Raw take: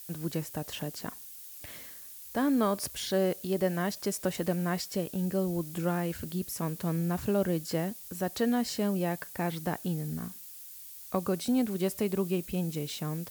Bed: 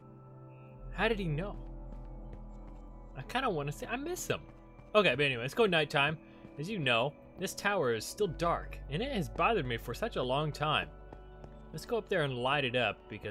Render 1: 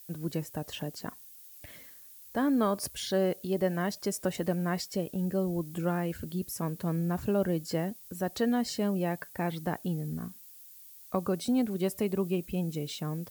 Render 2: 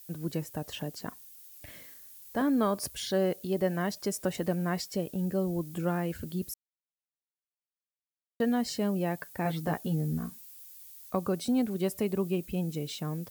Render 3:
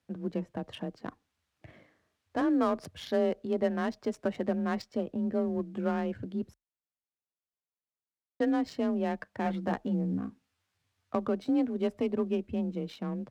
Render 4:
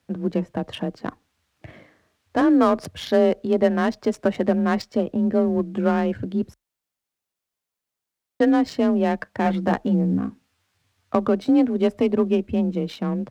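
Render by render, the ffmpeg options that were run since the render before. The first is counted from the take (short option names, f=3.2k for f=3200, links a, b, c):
-af "afftdn=nr=7:nf=-47"
-filter_complex "[0:a]asettb=1/sr,asplit=3[a][b][c];[a]atrim=end=1.624[d];[b]atrim=start=1.62:end=2.42,asetpts=PTS-STARTPTS,afade=t=in:d=0.004:c=qsin,afade=t=out:st=0.796:d=0.004:c=qsin,asplit=2[e][f];[f]adelay=40,volume=-6dB[g];[e][g]amix=inputs=2:normalize=0,atrim=end_sample=35280[h];[c]atrim=start=2.416[i];[d][h]acrossfade=d=0.004:c1=hsin:c2=qsin[j];[j][i]acrossfade=d=0.004:c1=qsin:c2=hsin,asettb=1/sr,asplit=3[k][l][m];[k]atrim=end=9.444[n];[l]atrim=start=9.44:end=11.1,asetpts=PTS-STARTPTS,afade=t=in:d=0.004:c=qsin,afade=t=out:st=1.656:d=0.004:c=qsin,asplit=2[o][p];[p]adelay=13,volume=-3dB[q];[o][q]amix=inputs=2:normalize=0,atrim=end_sample=73206[r];[m]atrim=start=11.096[s];[n][r]acrossfade=d=0.004:c1=hsin:c2=qsin[t];[t][s]acrossfade=d=0.004:c1=qsin:c2=hsin,asplit=3[u][v][w];[u]atrim=end=6.54,asetpts=PTS-STARTPTS,afade=t=out:st=6.536:d=0.004:c=hsin[x];[v]atrim=start=6.54:end=8.4,asetpts=PTS-STARTPTS,volume=0[y];[w]atrim=start=8.4,asetpts=PTS-STARTPTS,afade=t=in:d=0.004:c=hsin[z];[x][y][z]concat=n=3:v=0:a=1"
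-af "adynamicsmooth=sensitivity=5.5:basefreq=1.5k,afreqshift=29"
-af "volume=10dB"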